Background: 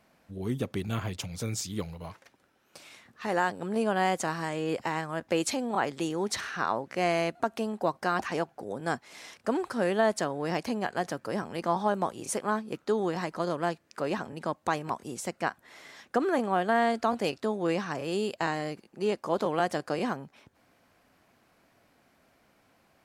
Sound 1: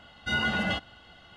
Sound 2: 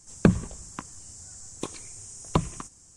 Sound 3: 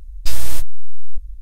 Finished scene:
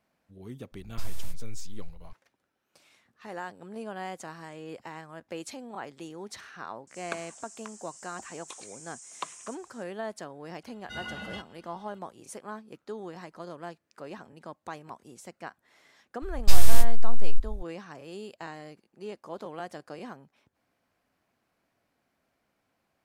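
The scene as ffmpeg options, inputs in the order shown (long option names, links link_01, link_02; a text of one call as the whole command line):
ffmpeg -i bed.wav -i cue0.wav -i cue1.wav -i cue2.wav -filter_complex "[3:a]asplit=2[link_01][link_02];[0:a]volume=-11dB[link_03];[link_01]asplit=2[link_04][link_05];[link_05]adelay=583.1,volume=-17dB,highshelf=frequency=4000:gain=-13.1[link_06];[link_04][link_06]amix=inputs=2:normalize=0[link_07];[2:a]highpass=1000[link_08];[1:a]highshelf=frequency=8900:gain=11.5[link_09];[link_07]atrim=end=1.41,asetpts=PTS-STARTPTS,volume=-17.5dB,afade=type=in:duration=0.004:curve=hsin,afade=type=out:start_time=1.406:duration=0.004:curve=hsin,adelay=720[link_10];[link_08]atrim=end=2.96,asetpts=PTS-STARTPTS,volume=-4.5dB,afade=type=in:duration=0.004:curve=hsin,afade=type=out:start_time=2.956:duration=0.004:curve=hsin,adelay=6870[link_11];[link_09]atrim=end=1.36,asetpts=PTS-STARTPTS,volume=-12dB,afade=type=in:duration=0.004:curve=hsin,afade=type=out:start_time=1.356:duration=0.004:curve=hsin,adelay=10630[link_12];[link_02]atrim=end=1.41,asetpts=PTS-STARTPTS,volume=-1dB,afade=type=in:duration=0.004:curve=hsin,afade=type=out:start_time=1.406:duration=0.004:curve=hsin,adelay=16220[link_13];[link_03][link_10][link_11][link_12][link_13]amix=inputs=5:normalize=0" out.wav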